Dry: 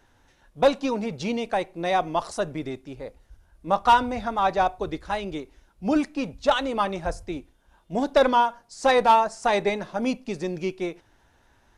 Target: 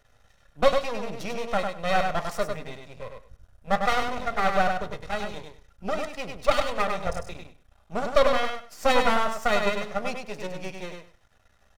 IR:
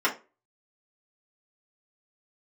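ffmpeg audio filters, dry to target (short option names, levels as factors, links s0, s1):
-filter_complex "[0:a]aecho=1:1:1.6:0.87,aeval=exprs='max(val(0),0)':c=same,aecho=1:1:100|200|300:0.562|0.101|0.0182,asplit=2[s0][s1];[1:a]atrim=start_sample=2205[s2];[s1][s2]afir=irnorm=-1:irlink=0,volume=0.0841[s3];[s0][s3]amix=inputs=2:normalize=0,volume=0.794"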